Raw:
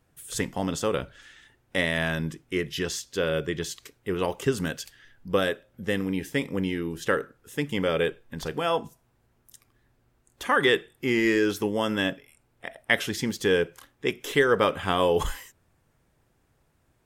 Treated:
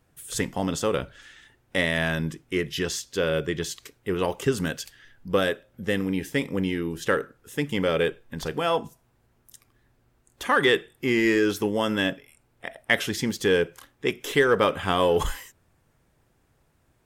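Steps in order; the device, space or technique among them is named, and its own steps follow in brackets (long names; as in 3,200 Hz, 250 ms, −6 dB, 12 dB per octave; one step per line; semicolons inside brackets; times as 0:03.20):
parallel distortion (in parallel at −13 dB: hard clipping −21.5 dBFS, distortion −10 dB)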